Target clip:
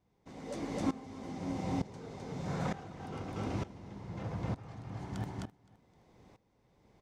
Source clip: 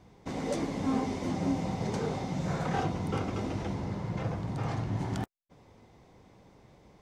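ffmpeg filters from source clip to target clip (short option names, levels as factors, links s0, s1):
-af "aecho=1:1:259|518|777:0.631|0.158|0.0394,aeval=exprs='val(0)*pow(10,-18*if(lt(mod(-1.1*n/s,1),2*abs(-1.1)/1000),1-mod(-1.1*n/s,1)/(2*abs(-1.1)/1000),(mod(-1.1*n/s,1)-2*abs(-1.1)/1000)/(1-2*abs(-1.1)/1000))/20)':c=same,volume=0.794"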